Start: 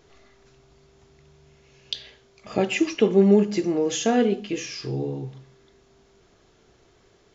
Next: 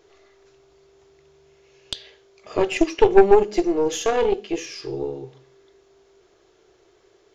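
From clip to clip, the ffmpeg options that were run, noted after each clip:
-af "lowshelf=f=290:t=q:w=3:g=-6.5,aeval=exprs='0.631*(cos(1*acos(clip(val(0)/0.631,-1,1)))-cos(1*PI/2))+0.2*(cos(4*acos(clip(val(0)/0.631,-1,1)))-cos(4*PI/2))+0.0501*(cos(6*acos(clip(val(0)/0.631,-1,1)))-cos(6*PI/2))+0.0112*(cos(7*acos(clip(val(0)/0.631,-1,1)))-cos(7*PI/2))':c=same"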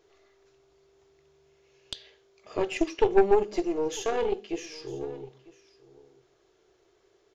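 -af "aecho=1:1:950:0.0944,volume=-7.5dB"

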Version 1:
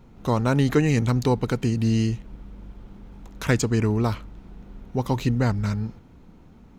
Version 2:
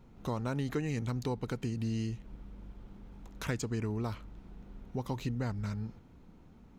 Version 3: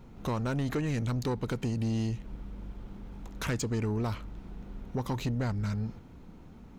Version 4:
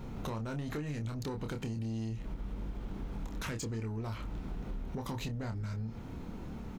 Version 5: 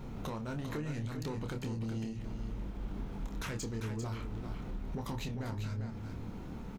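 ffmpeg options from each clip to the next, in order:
-af "acompressor=threshold=-28dB:ratio=2,volume=-7dB"
-af "asoftclip=type=tanh:threshold=-31dB,volume=6.5dB"
-filter_complex "[0:a]alimiter=level_in=9dB:limit=-24dB:level=0:latency=1:release=87,volume=-9dB,asplit=2[a][b];[b]adelay=27,volume=-6dB[c];[a][c]amix=inputs=2:normalize=0,acompressor=threshold=-42dB:ratio=6,volume=7dB"
-af "flanger=delay=6.5:depth=7.5:regen=-79:speed=1.2:shape=triangular,aecho=1:1:396:0.422,volume=3.5dB"

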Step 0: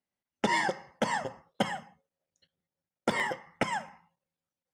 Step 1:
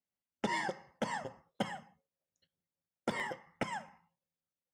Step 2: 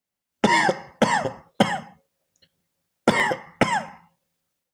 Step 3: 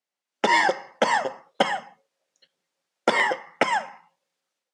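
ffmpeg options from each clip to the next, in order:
-af "lowshelf=f=370:g=3,volume=-8dB"
-af "dynaudnorm=f=240:g=3:m=10dB,volume=7dB"
-af "highpass=390,lowpass=7k"

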